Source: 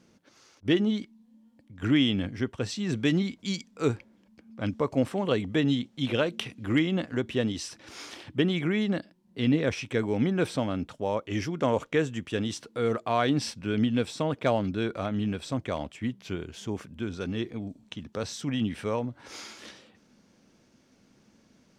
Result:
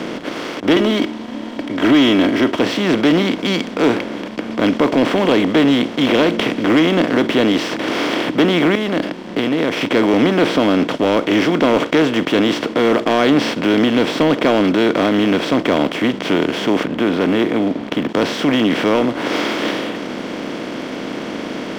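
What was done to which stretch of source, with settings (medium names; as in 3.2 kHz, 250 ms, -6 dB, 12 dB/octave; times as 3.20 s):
0.76–2.59 s: comb 3.1 ms, depth 77%
8.75–9.81 s: compression, threshold -36 dBFS
16.83–18.09 s: distance through air 380 m
whole clip: spectral levelling over time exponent 0.4; three-band isolator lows -18 dB, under 160 Hz, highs -14 dB, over 4.8 kHz; waveshaping leveller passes 2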